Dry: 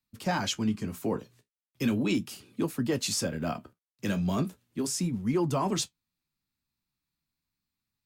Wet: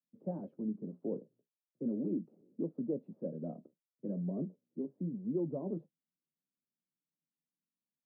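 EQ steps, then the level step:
Chebyshev band-pass filter 160–560 Hz, order 3
low-shelf EQ 430 Hz −5.5 dB
−3.0 dB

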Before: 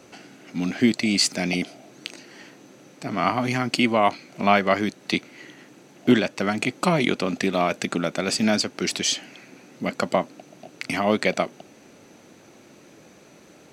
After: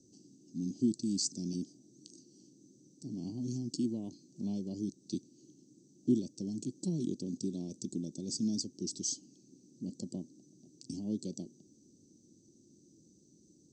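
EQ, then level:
elliptic band-stop filter 450–5,400 Hz, stop band 70 dB
Chebyshev low-pass filter 8,200 Hz, order 6
flat-topped bell 540 Hz −12.5 dB 1 octave
−8.5 dB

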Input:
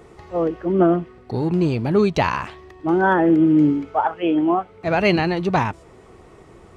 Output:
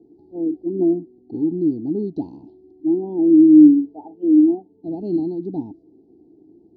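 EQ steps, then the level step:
formant filter u
Chebyshev band-stop filter 650–4,300 Hz, order 4
high-frequency loss of the air 220 metres
+8.5 dB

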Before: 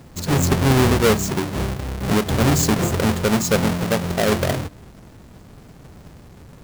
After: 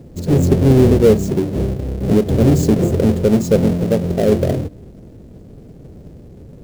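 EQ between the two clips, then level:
low shelf with overshoot 700 Hz +12 dB, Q 1.5
−7.5 dB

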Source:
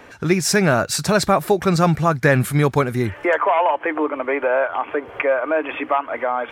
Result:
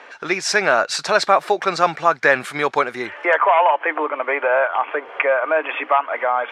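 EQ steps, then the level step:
band-pass filter 600–4,800 Hz
+4.0 dB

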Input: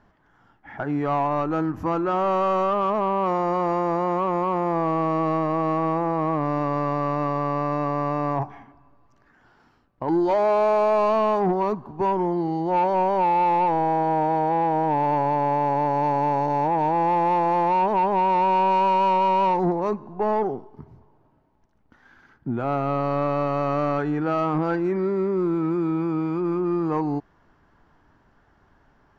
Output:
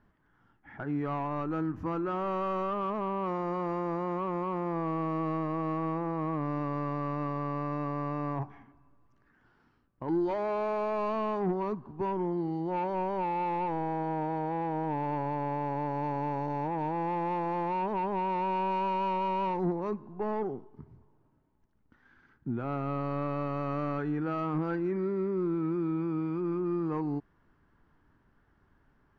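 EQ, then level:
low-pass filter 2,400 Hz 6 dB per octave
parametric band 710 Hz −7.5 dB 1.1 octaves
−5.5 dB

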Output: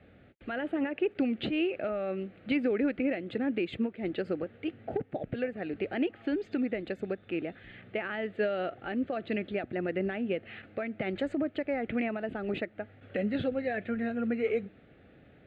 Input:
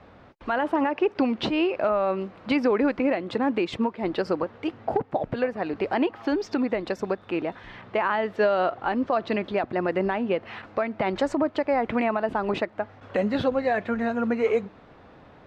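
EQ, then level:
high-pass filter 44 Hz
high-frequency loss of the air 55 metres
phaser with its sweep stopped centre 2,400 Hz, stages 4
−4.0 dB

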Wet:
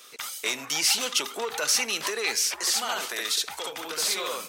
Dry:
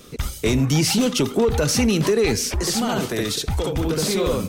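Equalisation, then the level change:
high-pass filter 1,000 Hz 12 dB per octave
0.0 dB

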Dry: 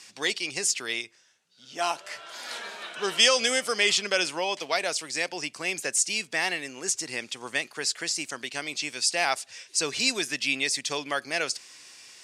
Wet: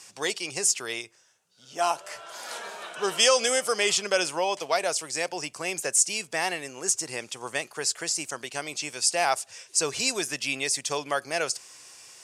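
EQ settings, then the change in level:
graphic EQ with 10 bands 250 Hz −8 dB, 2,000 Hz −7 dB, 4,000 Hz −8 dB
+5.0 dB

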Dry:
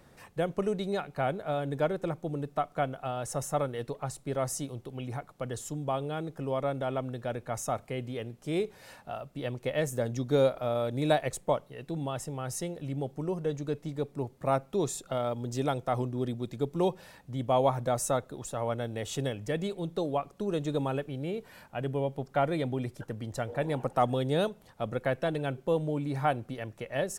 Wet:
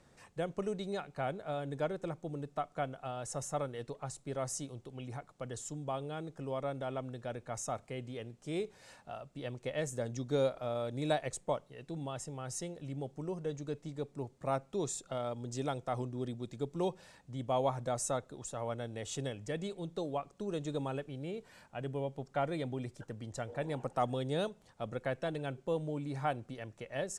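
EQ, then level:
low-pass with resonance 7,800 Hz, resonance Q 1.7
−6.5 dB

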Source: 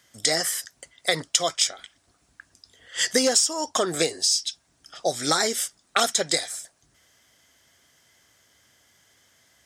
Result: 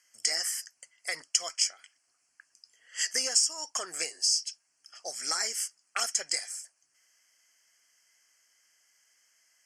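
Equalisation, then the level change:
Butterworth band-reject 3,700 Hz, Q 2.2
resonant band-pass 5,000 Hz, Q 0.58
−3.0 dB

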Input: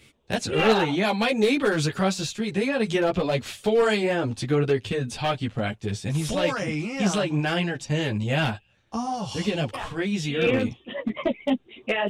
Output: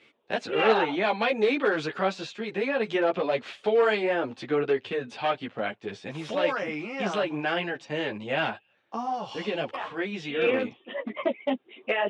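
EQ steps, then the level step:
band-pass filter 350–2,800 Hz
0.0 dB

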